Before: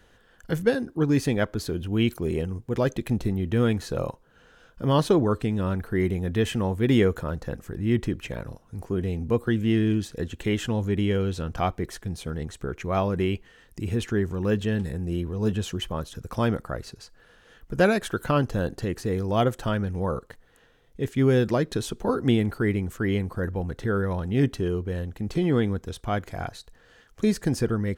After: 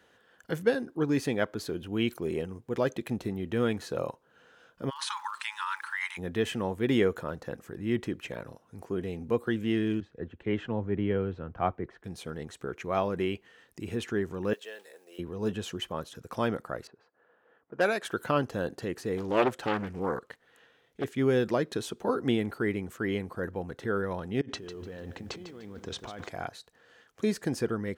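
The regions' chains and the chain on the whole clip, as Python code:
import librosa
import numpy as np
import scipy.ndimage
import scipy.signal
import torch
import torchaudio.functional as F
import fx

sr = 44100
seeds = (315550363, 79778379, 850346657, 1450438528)

y = fx.brickwall_bandpass(x, sr, low_hz=830.0, high_hz=11000.0, at=(4.89, 6.17), fade=0.02)
y = fx.over_compress(y, sr, threshold_db=-38.0, ratio=-1.0, at=(4.89, 6.17), fade=0.02)
y = fx.dmg_crackle(y, sr, seeds[0], per_s=240.0, level_db=-42.0, at=(4.89, 6.17), fade=0.02)
y = fx.chain(y, sr, fx.lowpass(hz=1900.0, slope=12),
    fx.low_shelf(hz=80.0, db=10.5),
    fx.band_widen(depth_pct=70), at=(10.0, 12.04))
y = fx.chain(y, sr, fx.block_float(bits=7),
    fx.ladder_highpass(hz=420.0, resonance_pct=45),
    fx.tilt_shelf(db=-6.5, hz=1200.0), at=(14.53, 15.19))
y = fx.chain(y, sr, fx.highpass(hz=470.0, slope=6),
    fx.env_lowpass(base_hz=1000.0, full_db=-21.0),
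    fx.overload_stage(gain_db=13.0), at=(16.87, 18.05))
y = fx.chain(y, sr, fx.peak_eq(hz=2600.0, db=4.5, octaves=2.0),
    fx.doppler_dist(depth_ms=0.77), at=(19.17, 21.04))
y = fx.chain(y, sr, fx.lowpass(hz=7200.0, slope=24),
    fx.over_compress(threshold_db=-35.0, ratio=-1.0),
    fx.echo_crushed(ms=149, feedback_pct=35, bits=9, wet_db=-10.5), at=(24.41, 26.29))
y = scipy.signal.sosfilt(scipy.signal.butter(2, 110.0, 'highpass', fs=sr, output='sos'), y)
y = fx.bass_treble(y, sr, bass_db=-6, treble_db=-3)
y = y * 10.0 ** (-2.5 / 20.0)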